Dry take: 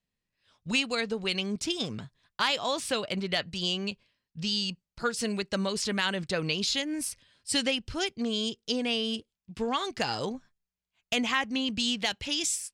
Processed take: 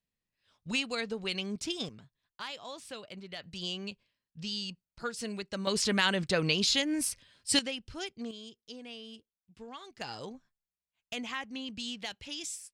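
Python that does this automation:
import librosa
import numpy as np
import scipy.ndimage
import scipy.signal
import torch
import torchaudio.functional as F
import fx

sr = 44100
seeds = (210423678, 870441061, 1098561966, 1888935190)

y = fx.gain(x, sr, db=fx.steps((0.0, -4.5), (1.89, -14.0), (3.44, -7.0), (5.67, 1.5), (7.59, -8.5), (8.31, -16.5), (10.01, -10.0)))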